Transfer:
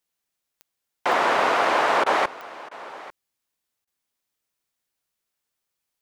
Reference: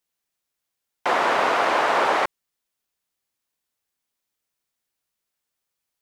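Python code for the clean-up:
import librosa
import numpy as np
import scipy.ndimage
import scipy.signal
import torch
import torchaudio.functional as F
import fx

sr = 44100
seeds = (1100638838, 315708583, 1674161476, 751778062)

y = fx.fix_declick_ar(x, sr, threshold=10.0)
y = fx.fix_interpolate(y, sr, at_s=(2.04, 2.69, 3.85), length_ms=21.0)
y = fx.fix_echo_inverse(y, sr, delay_ms=846, level_db=-18.5)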